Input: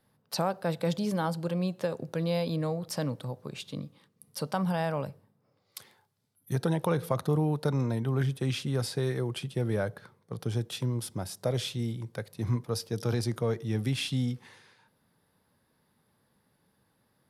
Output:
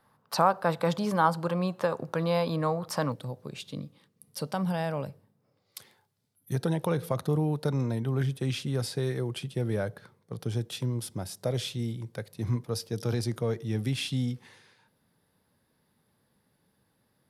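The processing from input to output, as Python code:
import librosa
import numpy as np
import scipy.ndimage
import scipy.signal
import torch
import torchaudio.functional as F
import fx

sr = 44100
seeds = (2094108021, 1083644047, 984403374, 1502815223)

y = fx.peak_eq(x, sr, hz=1100.0, db=fx.steps((0.0, 12.5), (3.12, -2.5)), octaves=1.2)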